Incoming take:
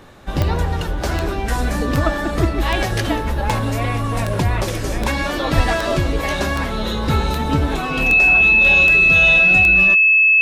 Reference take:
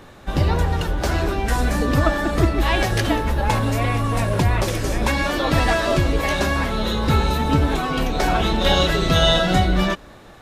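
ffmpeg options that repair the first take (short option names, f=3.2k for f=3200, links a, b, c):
-filter_complex "[0:a]adeclick=t=4,bandreject=f=2.6k:w=30,asplit=3[a][b][c];[a]afade=t=out:st=5.56:d=0.02[d];[b]highpass=f=140:w=0.5412,highpass=f=140:w=1.3066,afade=t=in:st=5.56:d=0.02,afade=t=out:st=5.68:d=0.02[e];[c]afade=t=in:st=5.68:d=0.02[f];[d][e][f]amix=inputs=3:normalize=0,asetnsamples=n=441:p=0,asendcmd='8.14 volume volume 6dB',volume=0dB"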